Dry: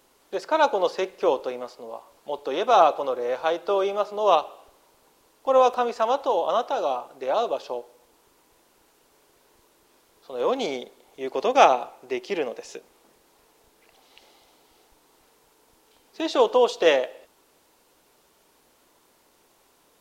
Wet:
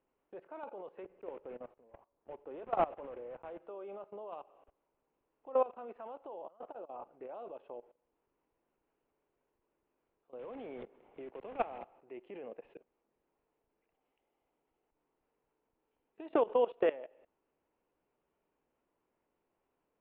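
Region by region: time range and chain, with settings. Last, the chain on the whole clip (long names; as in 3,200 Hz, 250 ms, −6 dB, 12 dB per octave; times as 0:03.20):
0:01.03–0:03.62: one scale factor per block 3 bits + high-shelf EQ 2,700 Hz −6.5 dB + one half of a high-frequency compander decoder only
0:06.42–0:07.29: high-shelf EQ 4,300 Hz −11.5 dB + compressor whose output falls as the input rises −33 dBFS
0:10.39–0:11.99: one scale factor per block 3 bits + multiband upward and downward compressor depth 70%
0:16.30–0:16.89: dynamic equaliser 1,800 Hz, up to +3 dB, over −35 dBFS, Q 1.1 + multiband upward and downward compressor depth 100%
whole clip: Butterworth low-pass 2,800 Hz 48 dB per octave; parametric band 2,000 Hz −7 dB 2.7 octaves; output level in coarse steps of 19 dB; level −7 dB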